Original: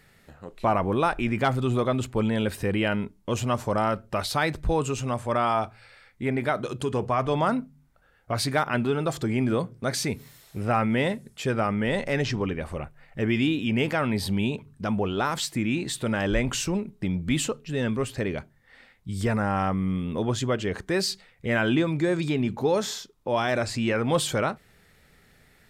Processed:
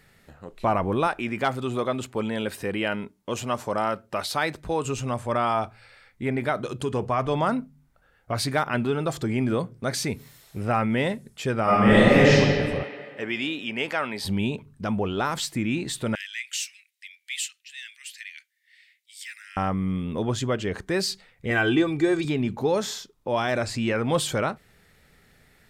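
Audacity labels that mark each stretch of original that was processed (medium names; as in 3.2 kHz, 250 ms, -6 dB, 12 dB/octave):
1.070000	4.850000	high-pass 270 Hz 6 dB/octave
11.630000	12.310000	reverb throw, RT60 2.2 s, DRR -10 dB
12.830000	14.250000	frequency weighting A
16.150000	19.570000	steep high-pass 1.9 kHz 48 dB/octave
21.500000	22.250000	comb 2.6 ms, depth 68%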